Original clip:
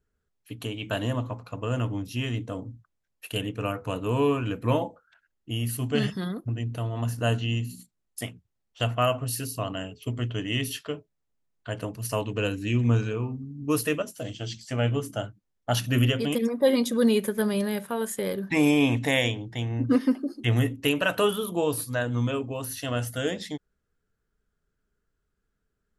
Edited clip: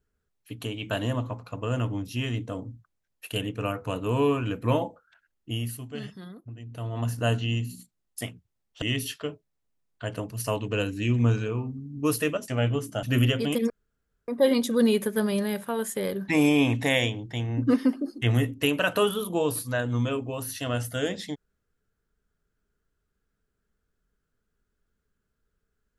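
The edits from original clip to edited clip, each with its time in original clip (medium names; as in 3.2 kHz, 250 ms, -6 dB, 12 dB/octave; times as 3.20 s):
5.53–6.98 s: dip -11.5 dB, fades 0.32 s
8.82–10.47 s: delete
14.13–14.69 s: delete
15.24–15.83 s: delete
16.50 s: insert room tone 0.58 s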